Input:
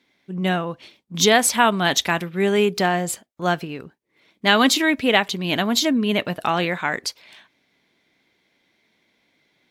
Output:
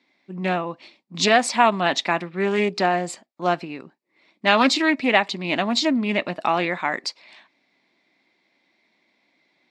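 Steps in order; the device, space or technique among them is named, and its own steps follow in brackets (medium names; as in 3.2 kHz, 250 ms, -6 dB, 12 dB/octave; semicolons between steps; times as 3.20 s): 1.81–2.51 s: tone controls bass 0 dB, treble -4 dB; full-range speaker at full volume (loudspeaker Doppler distortion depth 0.2 ms; cabinet simulation 250–6800 Hz, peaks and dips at 450 Hz -8 dB, 1.5 kHz -7 dB, 3.2 kHz -8 dB, 6.2 kHz -8 dB); trim +2 dB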